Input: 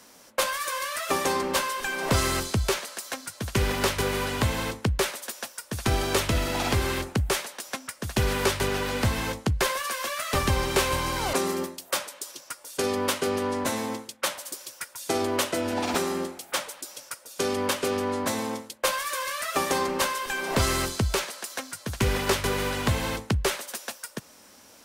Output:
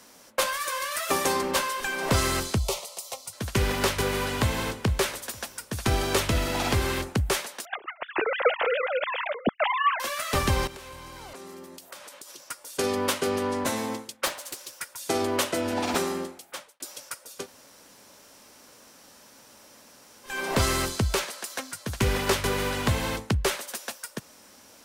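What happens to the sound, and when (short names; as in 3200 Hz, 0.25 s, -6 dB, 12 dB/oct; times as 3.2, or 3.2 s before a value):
0.91–1.51 high shelf 7200 Hz +5 dB
2.58–3.33 fixed phaser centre 670 Hz, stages 4
4.09–4.8 echo throw 0.46 s, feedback 35%, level -15.5 dB
7.65–10 sine-wave speech
10.67–12.47 compressor 12:1, threshold -39 dBFS
14.26–14.73 Doppler distortion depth 0.67 ms
16.02–16.8 fade out
17.39–20.31 room tone, crossfade 0.16 s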